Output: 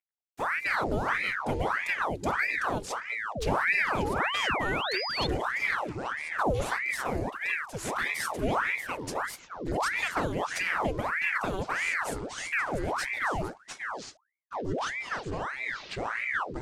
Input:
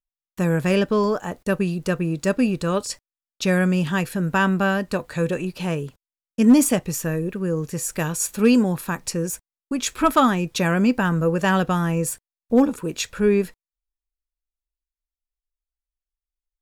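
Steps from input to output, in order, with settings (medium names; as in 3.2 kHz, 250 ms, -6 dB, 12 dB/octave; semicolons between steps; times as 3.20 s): CVSD coder 64 kbps; hum notches 50/100/150/200 Hz; compression 4:1, threshold -20 dBFS, peak gain reduction 9.5 dB; touch-sensitive flanger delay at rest 10.2 ms, full sweep at -20 dBFS; ever faster or slower copies 91 ms, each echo -7 st, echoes 2; painted sound rise, 3.35–5.27 s, 220–4000 Hz -26 dBFS; ring modulator with a swept carrier 1.2 kHz, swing 85%, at 1.6 Hz; trim -3.5 dB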